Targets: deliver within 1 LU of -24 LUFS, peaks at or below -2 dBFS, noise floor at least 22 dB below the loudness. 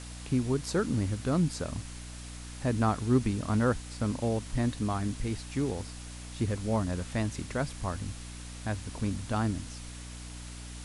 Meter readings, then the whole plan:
hum 60 Hz; highest harmonic 300 Hz; hum level -42 dBFS; noise floor -43 dBFS; noise floor target -54 dBFS; loudness -31.5 LUFS; peak level -12.5 dBFS; loudness target -24.0 LUFS
-> de-hum 60 Hz, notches 5; noise reduction 11 dB, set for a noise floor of -43 dBFS; trim +7.5 dB

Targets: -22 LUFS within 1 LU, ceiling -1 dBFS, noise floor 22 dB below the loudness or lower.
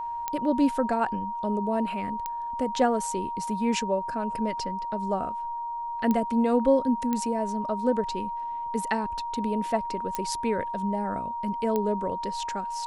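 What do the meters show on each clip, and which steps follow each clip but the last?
clicks found 6; steady tone 940 Hz; tone level -30 dBFS; loudness -28.0 LUFS; peak level -9.0 dBFS; loudness target -22.0 LUFS
-> de-click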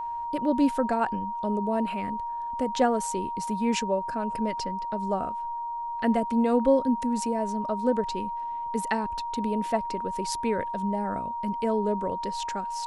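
clicks found 0; steady tone 940 Hz; tone level -30 dBFS
-> band-stop 940 Hz, Q 30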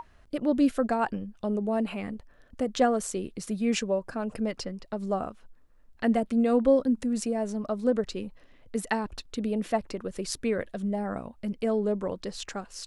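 steady tone not found; loudness -29.0 LUFS; peak level -11.0 dBFS; loudness target -22.0 LUFS
-> trim +7 dB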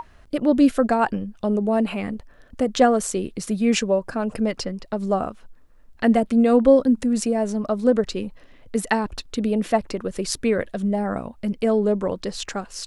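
loudness -22.0 LUFS; peak level -4.0 dBFS; noise floor -50 dBFS

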